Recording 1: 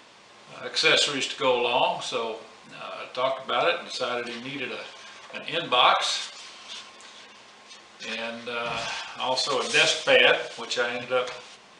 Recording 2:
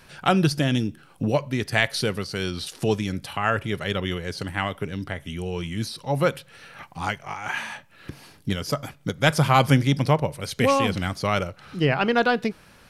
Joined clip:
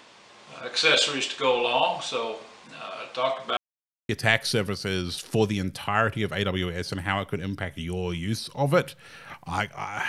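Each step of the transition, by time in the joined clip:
recording 1
3.57–4.09 mute
4.09 switch to recording 2 from 1.58 s

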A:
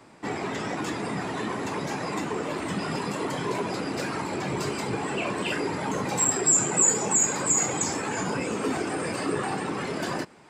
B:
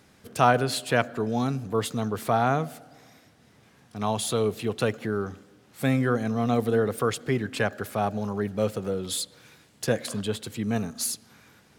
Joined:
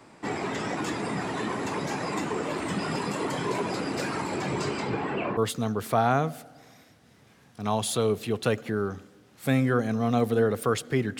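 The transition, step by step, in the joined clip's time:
A
4.46–5.37 LPF 11000 Hz -> 1500 Hz
5.37 switch to B from 1.73 s

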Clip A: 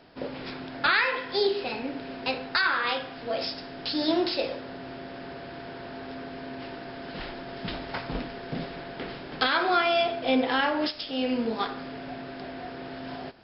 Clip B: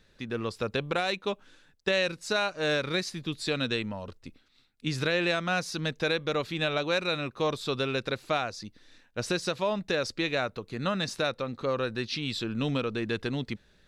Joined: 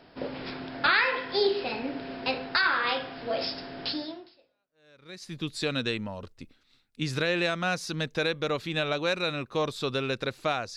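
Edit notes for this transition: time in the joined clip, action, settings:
clip A
4.62 switch to clip B from 2.47 s, crossfade 1.44 s exponential

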